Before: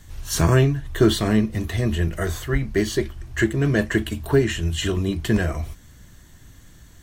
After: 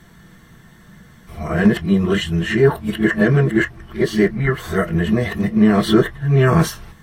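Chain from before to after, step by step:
played backwards from end to start
in parallel at +2 dB: brickwall limiter −13.5 dBFS, peak gain reduction 8.5 dB
on the sum: convolution reverb, pre-delay 3 ms, DRR 4 dB
level −9 dB

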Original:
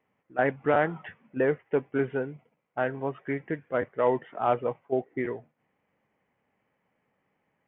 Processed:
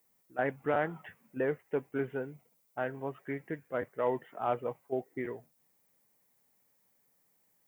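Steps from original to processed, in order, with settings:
background noise violet −66 dBFS
level −6.5 dB

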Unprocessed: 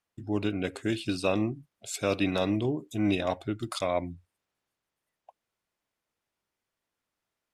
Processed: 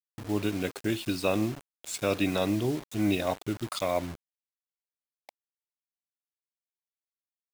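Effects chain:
bit reduction 7 bits

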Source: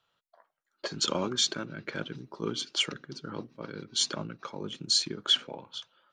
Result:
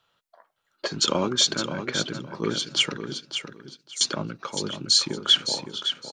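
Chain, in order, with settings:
0:03.20–0:04.01: inverse Chebyshev high-pass filter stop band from 1,300 Hz, stop band 80 dB
on a send: repeating echo 562 ms, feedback 21%, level −8.5 dB
on the sum: level +6 dB

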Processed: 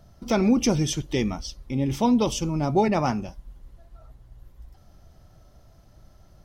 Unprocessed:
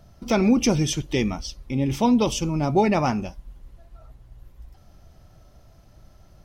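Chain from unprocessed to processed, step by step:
parametric band 2,500 Hz −3.5 dB 0.41 octaves
0:02.88–0:03.28: multiband upward and downward expander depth 40%
level −1.5 dB

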